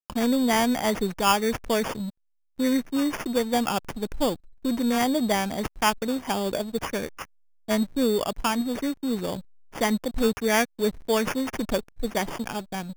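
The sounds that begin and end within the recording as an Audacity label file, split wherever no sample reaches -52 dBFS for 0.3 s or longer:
2.580000	7.250000	sound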